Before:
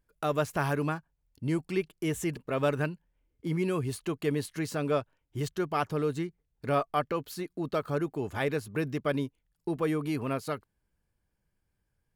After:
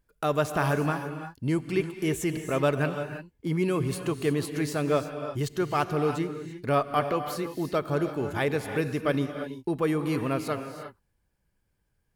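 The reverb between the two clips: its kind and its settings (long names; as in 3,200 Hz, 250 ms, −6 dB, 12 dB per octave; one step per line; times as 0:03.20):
reverb whose tail is shaped and stops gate 370 ms rising, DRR 7.5 dB
level +3 dB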